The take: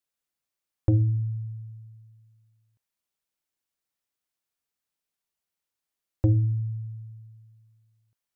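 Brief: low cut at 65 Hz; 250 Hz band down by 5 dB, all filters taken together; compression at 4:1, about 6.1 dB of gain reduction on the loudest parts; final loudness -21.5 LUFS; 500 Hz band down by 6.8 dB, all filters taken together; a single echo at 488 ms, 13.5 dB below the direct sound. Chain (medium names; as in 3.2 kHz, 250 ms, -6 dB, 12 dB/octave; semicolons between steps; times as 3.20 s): high-pass 65 Hz; peaking EQ 250 Hz -3.5 dB; peaking EQ 500 Hz -8.5 dB; compression 4:1, threshold -25 dBFS; delay 488 ms -13.5 dB; trim +11 dB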